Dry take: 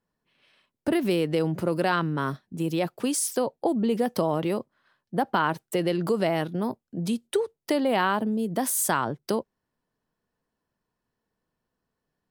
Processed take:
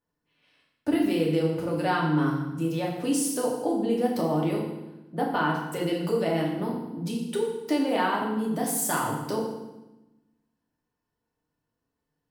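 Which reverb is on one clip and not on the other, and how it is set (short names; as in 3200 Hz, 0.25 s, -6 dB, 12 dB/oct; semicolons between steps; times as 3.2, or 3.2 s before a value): FDN reverb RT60 0.99 s, low-frequency decay 1.45×, high-frequency decay 0.9×, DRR -3 dB; gain -6.5 dB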